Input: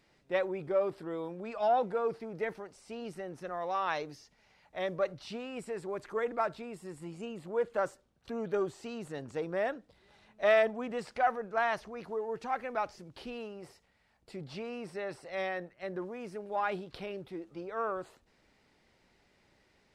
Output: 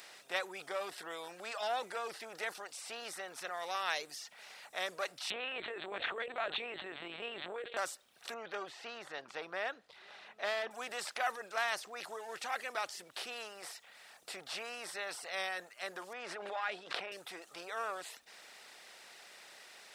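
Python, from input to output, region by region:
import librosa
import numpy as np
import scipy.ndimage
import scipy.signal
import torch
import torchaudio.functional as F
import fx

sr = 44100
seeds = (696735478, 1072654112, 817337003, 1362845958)

y = fx.chain(x, sr, fx.peak_eq(hz=1100.0, db=-8.5, octaves=1.3),
    fx.lpc_vocoder(seeds[0], excitation='pitch_kept', order=10),
    fx.env_flatten(amount_pct=70), at=(5.3, 7.77))
y = fx.chain(y, sr, fx.clip_hard(threshold_db=-23.0),
    fx.air_absorb(metres=290.0), at=(8.34, 10.71))
y = fx.chain(y, sr, fx.bandpass_edges(low_hz=180.0, high_hz=2400.0),
    fx.pre_swell(db_per_s=27.0), at=(16.13, 17.12))
y = fx.bin_compress(y, sr, power=0.6)
y = np.diff(y, prepend=0.0)
y = fx.dereverb_blind(y, sr, rt60_s=0.57)
y = y * librosa.db_to_amplitude(9.5)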